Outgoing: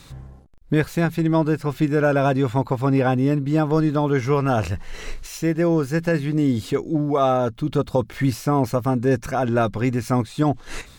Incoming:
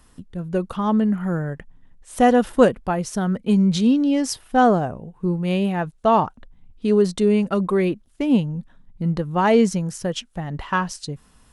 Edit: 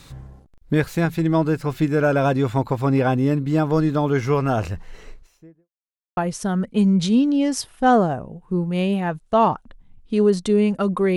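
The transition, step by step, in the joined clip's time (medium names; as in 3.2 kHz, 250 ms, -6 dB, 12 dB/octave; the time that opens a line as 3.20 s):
outgoing
4.27–5.69 s: studio fade out
5.69–6.17 s: mute
6.17 s: go over to incoming from 2.89 s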